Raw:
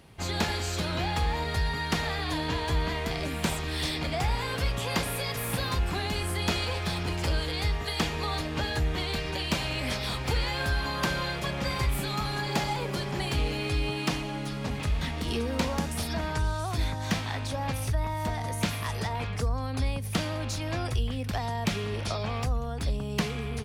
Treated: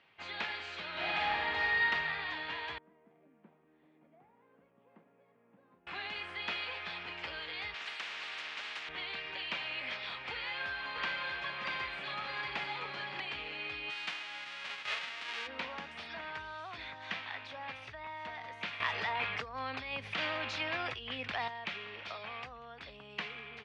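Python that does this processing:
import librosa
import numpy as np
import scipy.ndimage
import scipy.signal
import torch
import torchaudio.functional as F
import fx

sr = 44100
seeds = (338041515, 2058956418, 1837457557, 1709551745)

y = fx.reverb_throw(x, sr, start_s=0.91, length_s=0.93, rt60_s=2.5, drr_db=-6.5)
y = fx.ladder_bandpass(y, sr, hz=250.0, resonance_pct=40, at=(2.78, 5.87))
y = fx.spectral_comp(y, sr, ratio=10.0, at=(7.74, 8.89))
y = fx.echo_single(y, sr, ms=636, db=-3.5, at=(10.32, 13.2))
y = fx.envelope_flatten(y, sr, power=0.1, at=(13.89, 15.46), fade=0.02)
y = fx.env_flatten(y, sr, amount_pct=100, at=(18.8, 21.48))
y = scipy.signal.sosfilt(scipy.signal.butter(4, 2700.0, 'lowpass', fs=sr, output='sos'), y)
y = np.diff(y, prepend=0.0)
y = y * 10.0 ** (8.0 / 20.0)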